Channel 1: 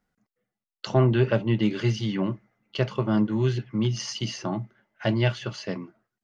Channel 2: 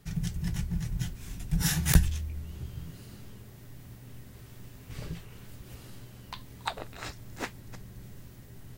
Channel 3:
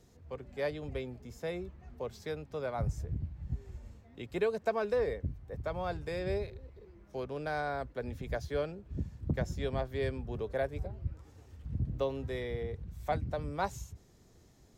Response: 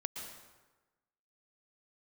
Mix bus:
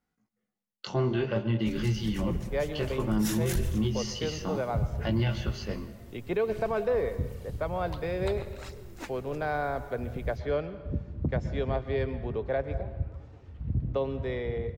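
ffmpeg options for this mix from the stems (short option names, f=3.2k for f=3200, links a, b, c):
-filter_complex "[0:a]bandreject=f=630:w=16,flanger=delay=17.5:depth=3.7:speed=0.57,volume=-4dB,asplit=2[a][b];[b]volume=-6dB[c];[1:a]aphaser=in_gain=1:out_gain=1:delay=4:decay=0.49:speed=1.4:type=triangular,adelay=1600,volume=-8.5dB,asplit=2[d][e];[e]volume=-9.5dB[f];[2:a]lowpass=3.1k,adelay=1950,volume=1.5dB,asplit=2[g][h];[h]volume=-5dB[i];[3:a]atrim=start_sample=2205[j];[c][f][i]amix=inputs=3:normalize=0[k];[k][j]afir=irnorm=-1:irlink=0[l];[a][d][g][l]amix=inputs=4:normalize=0,equalizer=f=1.7k:w=5.2:g=-2.5,alimiter=limit=-19.5dB:level=0:latency=1:release=10"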